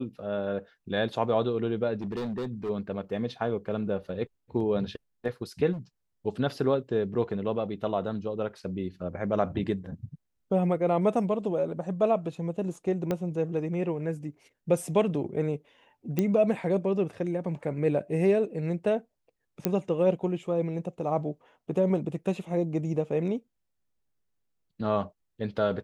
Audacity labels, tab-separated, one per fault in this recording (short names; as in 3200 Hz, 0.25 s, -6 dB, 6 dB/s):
2.010000	2.700000	clipped -29 dBFS
5.720000	5.790000	clipped -33 dBFS
13.110000	13.110000	pop -16 dBFS
16.190000	16.190000	pop -13 dBFS
19.650000	19.650000	pop -11 dBFS